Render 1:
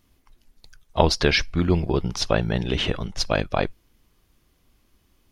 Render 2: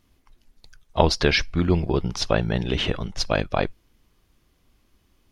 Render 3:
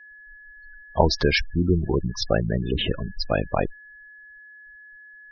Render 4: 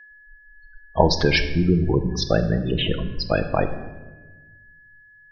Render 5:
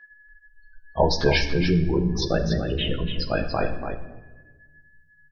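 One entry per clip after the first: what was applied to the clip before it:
high-shelf EQ 10,000 Hz −5.5 dB
steady tone 1,700 Hz −44 dBFS; gate on every frequency bin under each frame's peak −15 dB strong
rectangular room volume 770 cubic metres, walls mixed, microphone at 0.62 metres; level +1.5 dB
multi-voice chorus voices 2, 0.39 Hz, delay 15 ms, depth 3 ms; single-tap delay 288 ms −7.5 dB

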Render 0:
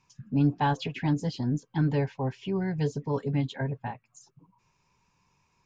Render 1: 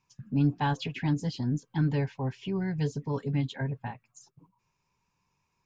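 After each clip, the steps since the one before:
noise gate −58 dBFS, range −7 dB
dynamic equaliser 590 Hz, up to −5 dB, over −41 dBFS, Q 0.77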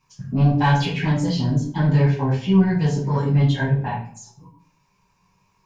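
soft clipping −22.5 dBFS, distortion −15 dB
convolution reverb RT60 0.55 s, pre-delay 5 ms, DRR −7 dB
level +4.5 dB

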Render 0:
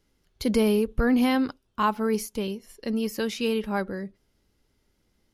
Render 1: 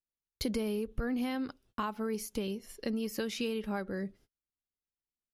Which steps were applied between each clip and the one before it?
noise gate −56 dBFS, range −35 dB
downward compressor, threshold −31 dBFS, peak gain reduction 12.5 dB
parametric band 960 Hz −4.5 dB 0.26 octaves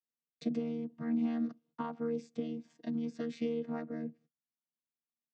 channel vocoder with a chord as carrier bare fifth, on D#3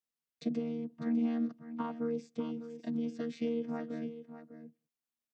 single-tap delay 601 ms −11.5 dB

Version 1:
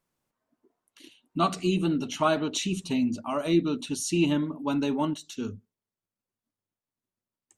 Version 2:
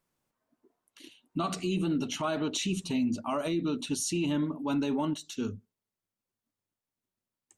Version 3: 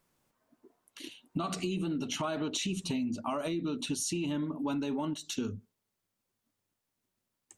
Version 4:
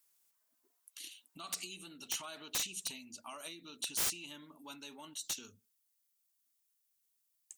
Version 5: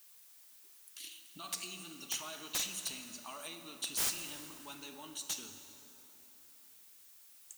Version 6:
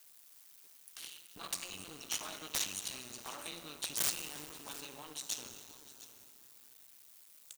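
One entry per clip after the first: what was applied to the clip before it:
brickwall limiter −22 dBFS, peak gain reduction 11 dB
downward compressor 6 to 1, threshold −37 dBFS, peak gain reduction 11 dB; level +6 dB
first-order pre-emphasis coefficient 0.97; wrap-around overflow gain 30.5 dB; level +4 dB
background noise blue −60 dBFS; dense smooth reverb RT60 3.6 s, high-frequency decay 0.6×, DRR 6 dB
sub-harmonics by changed cycles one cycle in 2, muted; single-tap delay 707 ms −16.5 dB; level +3 dB

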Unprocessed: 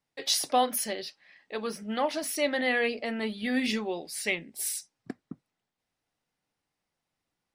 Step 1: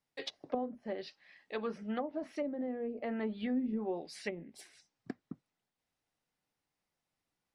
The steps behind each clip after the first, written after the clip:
treble cut that deepens with the level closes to 360 Hz, closed at −24.5 dBFS
level −3.5 dB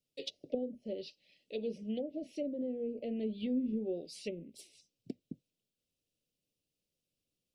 Chebyshev band-stop filter 560–2,700 Hz, order 3
level +1 dB

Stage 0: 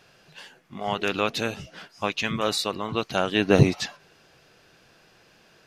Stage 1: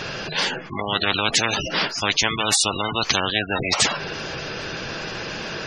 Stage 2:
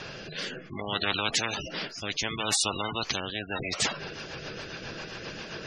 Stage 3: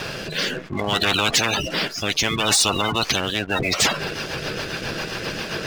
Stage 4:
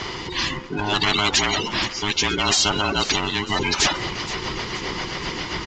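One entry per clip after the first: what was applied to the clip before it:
gate on every frequency bin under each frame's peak −20 dB strong; notch filter 720 Hz, Q 13; every bin compressed towards the loudest bin 10 to 1
rotating-speaker cabinet horn 0.65 Hz, later 7.5 Hz, at 0:03.27; level −6.5 dB
leveller curve on the samples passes 3
frequency inversion band by band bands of 500 Hz; downsampling to 16,000 Hz; echo with a time of its own for lows and highs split 1,400 Hz, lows 135 ms, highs 474 ms, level −15.5 dB

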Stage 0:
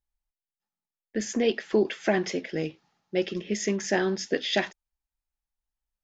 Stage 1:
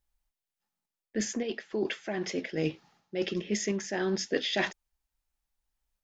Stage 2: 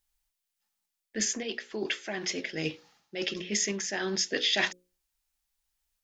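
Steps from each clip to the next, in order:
reversed playback; downward compressor 10 to 1, threshold −31 dBFS, peak gain reduction 14 dB; reversed playback; sample-and-hold tremolo; level +6.5 dB
tilt shelving filter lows −5.5 dB, about 1,500 Hz; mains-hum notches 60/120/180/240/300/360/420/480/540 Hz; level +2 dB

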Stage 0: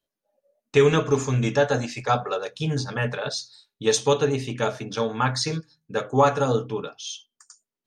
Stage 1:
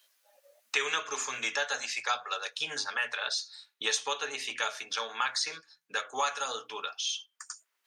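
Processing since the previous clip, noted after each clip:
high-pass filter 1,400 Hz 12 dB per octave
multiband upward and downward compressor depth 70%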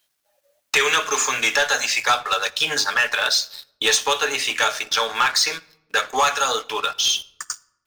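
leveller curve on the samples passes 3
bit reduction 12 bits
rectangular room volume 3,100 cubic metres, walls furnished, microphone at 0.43 metres
level +2.5 dB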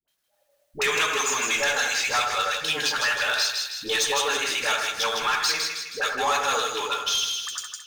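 all-pass dispersion highs, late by 80 ms, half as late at 590 Hz
soft clipping −12.5 dBFS, distortion −17 dB
echo with a time of its own for lows and highs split 1,700 Hz, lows 83 ms, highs 158 ms, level −4 dB
level −4 dB

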